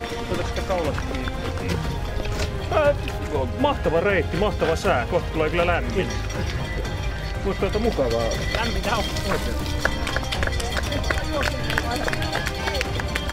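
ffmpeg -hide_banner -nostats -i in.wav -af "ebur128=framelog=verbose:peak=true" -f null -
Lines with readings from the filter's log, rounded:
Integrated loudness:
  I:         -24.1 LUFS
  Threshold: -34.1 LUFS
Loudness range:
  LRA:         2.4 LU
  Threshold: -43.9 LUFS
  LRA low:   -24.8 LUFS
  LRA high:  -22.4 LUFS
True peak:
  Peak:       -3.0 dBFS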